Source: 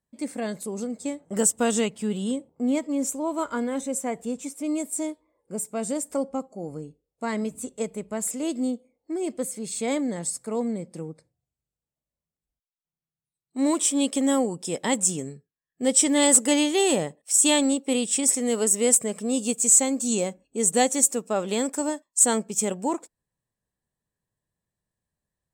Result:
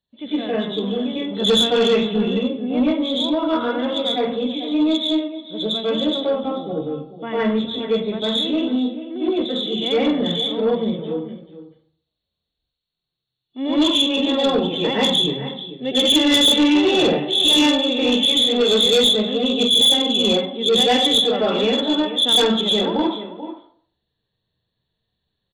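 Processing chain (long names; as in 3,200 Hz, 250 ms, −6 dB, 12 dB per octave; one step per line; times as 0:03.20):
hearing-aid frequency compression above 2,600 Hz 4 to 1
slap from a distant wall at 75 metres, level −13 dB
convolution reverb RT60 0.55 s, pre-delay 93 ms, DRR −9 dB
soft clipping −8.5 dBFS, distortion −12 dB
level −2 dB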